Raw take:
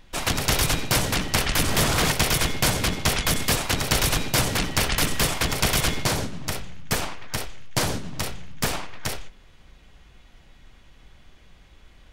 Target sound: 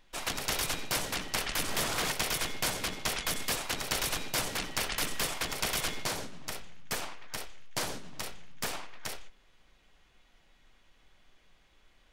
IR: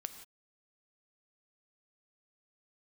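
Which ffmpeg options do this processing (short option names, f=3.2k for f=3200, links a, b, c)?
-af "equalizer=f=75:w=0.4:g=-11.5,volume=-8.5dB"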